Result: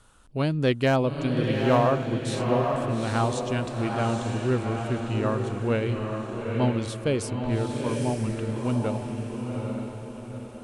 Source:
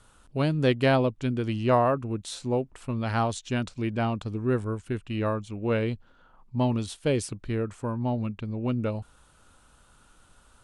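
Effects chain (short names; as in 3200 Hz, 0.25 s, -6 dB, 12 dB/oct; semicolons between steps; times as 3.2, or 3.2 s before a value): overloaded stage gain 14 dB; diffused feedback echo 0.854 s, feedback 44%, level -3 dB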